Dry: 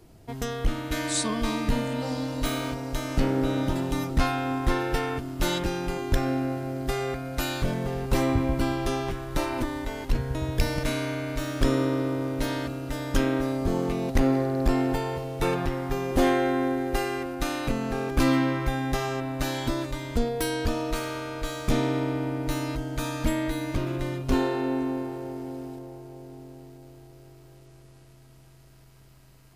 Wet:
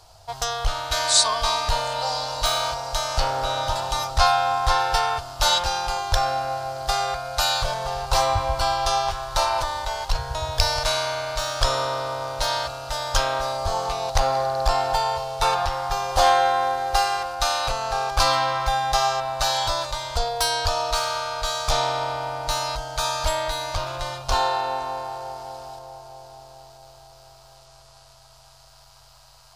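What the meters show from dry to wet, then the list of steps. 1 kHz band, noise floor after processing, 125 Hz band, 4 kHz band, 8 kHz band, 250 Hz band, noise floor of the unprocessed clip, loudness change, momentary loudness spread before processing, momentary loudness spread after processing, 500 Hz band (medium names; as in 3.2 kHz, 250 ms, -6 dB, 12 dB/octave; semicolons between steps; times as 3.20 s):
+11.5 dB, -51 dBFS, -3.5 dB, +12.5 dB, +10.0 dB, -18.5 dB, -52 dBFS, +4.5 dB, 8 LU, 9 LU, +2.5 dB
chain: FFT filter 100 Hz 0 dB, 240 Hz -25 dB, 360 Hz -17 dB, 540 Hz +2 dB, 780 Hz +12 dB, 1.4 kHz +8 dB, 2 kHz -1 dB, 4.6 kHz +15 dB, 13 kHz +1 dB; trim +1 dB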